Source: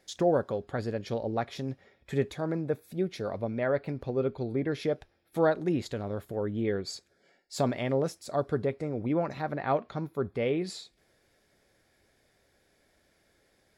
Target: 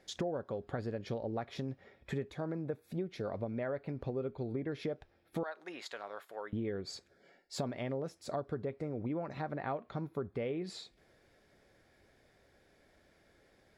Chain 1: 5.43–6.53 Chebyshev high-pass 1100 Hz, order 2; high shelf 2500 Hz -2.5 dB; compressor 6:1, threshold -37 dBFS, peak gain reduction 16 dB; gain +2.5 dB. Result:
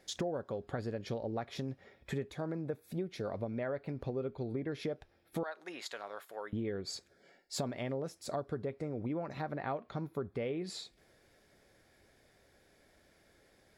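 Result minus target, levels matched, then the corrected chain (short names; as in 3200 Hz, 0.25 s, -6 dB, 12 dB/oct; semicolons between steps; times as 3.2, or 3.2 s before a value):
8000 Hz band +5.0 dB
5.43–6.53 Chebyshev high-pass 1100 Hz, order 2; high shelf 2500 Hz -2.5 dB; compressor 6:1, threshold -37 dBFS, peak gain reduction 16 dB; high shelf 6000 Hz -8.5 dB; gain +2.5 dB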